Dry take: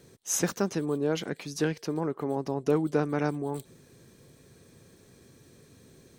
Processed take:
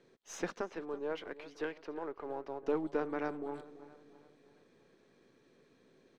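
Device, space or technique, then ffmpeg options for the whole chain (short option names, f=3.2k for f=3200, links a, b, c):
crystal radio: -filter_complex "[0:a]asettb=1/sr,asplit=3[a][b][c];[a]atrim=end=0.614[d];[b]atrim=start=0.61:end=2.63,asetpts=PTS-STARTPTS,afade=t=in:d=0.004:c=qsin,afade=t=out:st=2.016:d=0.004:c=qsin,bass=f=250:g=-15,treble=f=4k:g=-7[e];[c]atrim=start=2.626[f];[d][e]acrossfade=d=0.004:c1=hsin:c2=qsin[g];[g][f]acrossfade=d=0.004:c1=qsin:c2=hsin,highpass=260,lowpass=3.3k,aeval=exprs='if(lt(val(0),0),0.708*val(0),val(0))':c=same,asplit=2[h][i];[i]adelay=332,lowpass=f=2.3k:p=1,volume=-15dB,asplit=2[j][k];[k]adelay=332,lowpass=f=2.3k:p=1,volume=0.47,asplit=2[l][m];[m]adelay=332,lowpass=f=2.3k:p=1,volume=0.47,asplit=2[n][o];[o]adelay=332,lowpass=f=2.3k:p=1,volume=0.47[p];[h][j][l][n][p]amix=inputs=5:normalize=0,volume=-5.5dB"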